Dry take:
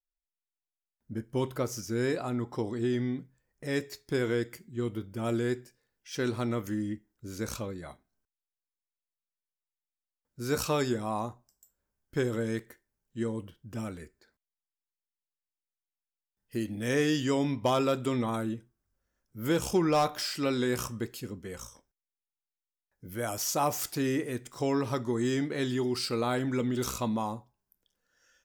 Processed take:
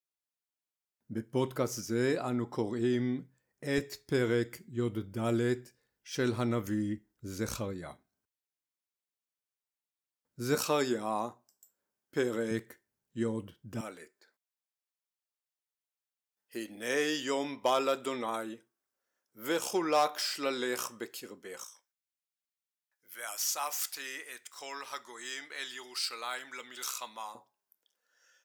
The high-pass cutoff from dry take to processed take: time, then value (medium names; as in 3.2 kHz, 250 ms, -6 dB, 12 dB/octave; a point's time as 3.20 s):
120 Hz
from 3.78 s 41 Hz
from 7.74 s 89 Hz
from 10.55 s 240 Hz
from 12.51 s 100 Hz
from 13.81 s 440 Hz
from 21.64 s 1.3 kHz
from 27.35 s 480 Hz